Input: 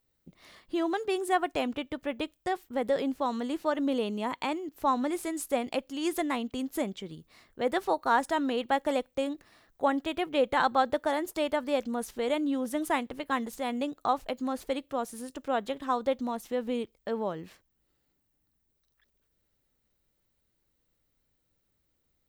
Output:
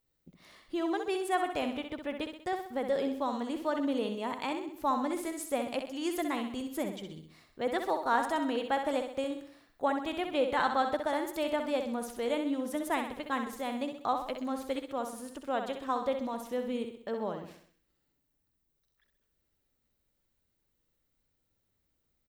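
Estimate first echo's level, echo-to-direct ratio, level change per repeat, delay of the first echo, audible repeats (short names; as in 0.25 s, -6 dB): -7.0 dB, -6.0 dB, -6.5 dB, 64 ms, 5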